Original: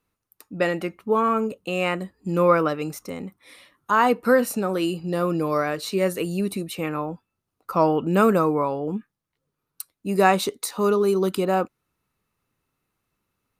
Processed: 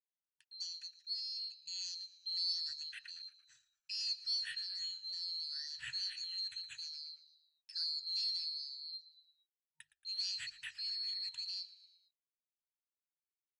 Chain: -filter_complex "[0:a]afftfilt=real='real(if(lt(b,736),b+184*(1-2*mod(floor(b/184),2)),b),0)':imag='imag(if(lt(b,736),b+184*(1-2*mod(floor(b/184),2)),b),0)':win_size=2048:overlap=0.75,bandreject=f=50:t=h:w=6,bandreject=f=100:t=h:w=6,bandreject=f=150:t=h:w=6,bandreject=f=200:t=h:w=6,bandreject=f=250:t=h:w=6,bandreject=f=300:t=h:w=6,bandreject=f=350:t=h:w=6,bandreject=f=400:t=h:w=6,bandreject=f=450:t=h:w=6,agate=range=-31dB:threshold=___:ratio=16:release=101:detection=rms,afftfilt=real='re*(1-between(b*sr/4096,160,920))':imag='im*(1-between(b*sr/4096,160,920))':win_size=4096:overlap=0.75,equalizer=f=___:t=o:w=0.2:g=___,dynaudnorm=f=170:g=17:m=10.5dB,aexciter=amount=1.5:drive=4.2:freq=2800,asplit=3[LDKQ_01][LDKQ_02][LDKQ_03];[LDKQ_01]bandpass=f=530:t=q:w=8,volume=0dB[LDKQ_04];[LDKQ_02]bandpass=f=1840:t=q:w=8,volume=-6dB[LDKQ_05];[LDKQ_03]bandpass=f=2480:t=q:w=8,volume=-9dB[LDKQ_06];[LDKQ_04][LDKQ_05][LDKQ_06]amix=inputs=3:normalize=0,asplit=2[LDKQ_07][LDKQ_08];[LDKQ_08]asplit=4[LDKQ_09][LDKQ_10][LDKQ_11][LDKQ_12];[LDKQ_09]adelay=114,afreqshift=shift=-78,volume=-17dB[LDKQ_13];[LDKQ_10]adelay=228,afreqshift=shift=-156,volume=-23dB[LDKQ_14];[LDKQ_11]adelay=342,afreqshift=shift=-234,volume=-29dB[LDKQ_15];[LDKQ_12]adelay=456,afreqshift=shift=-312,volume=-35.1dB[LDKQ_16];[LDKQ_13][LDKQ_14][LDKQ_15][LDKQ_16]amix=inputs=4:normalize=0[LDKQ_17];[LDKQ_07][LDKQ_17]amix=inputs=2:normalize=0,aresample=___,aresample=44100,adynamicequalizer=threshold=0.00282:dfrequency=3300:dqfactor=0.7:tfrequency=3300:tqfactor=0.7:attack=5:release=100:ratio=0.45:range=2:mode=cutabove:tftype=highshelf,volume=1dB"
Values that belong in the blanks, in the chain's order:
-47dB, 1100, -6, 22050